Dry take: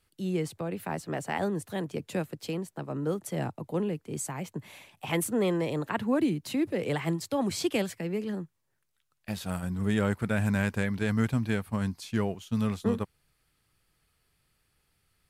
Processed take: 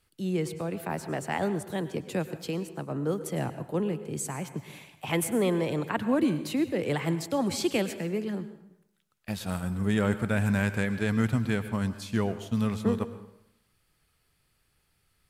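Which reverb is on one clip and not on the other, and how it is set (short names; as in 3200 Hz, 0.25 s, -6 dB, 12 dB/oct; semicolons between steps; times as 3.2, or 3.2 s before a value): plate-style reverb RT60 0.78 s, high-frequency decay 0.8×, pre-delay 90 ms, DRR 12 dB; gain +1 dB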